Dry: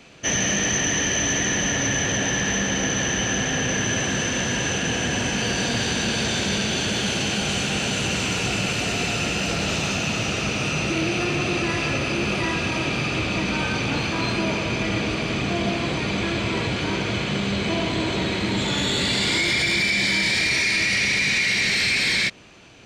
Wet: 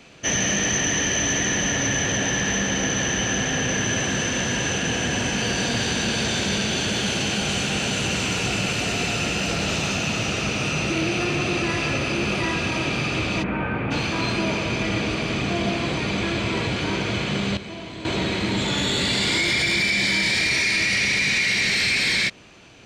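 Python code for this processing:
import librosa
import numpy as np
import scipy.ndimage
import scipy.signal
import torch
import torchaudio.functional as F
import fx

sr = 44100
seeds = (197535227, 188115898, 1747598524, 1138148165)

y = fx.lowpass(x, sr, hz=2100.0, slope=24, at=(13.42, 13.9), fade=0.02)
y = fx.edit(y, sr, fx.clip_gain(start_s=17.57, length_s=0.48, db=-11.5), tone=tone)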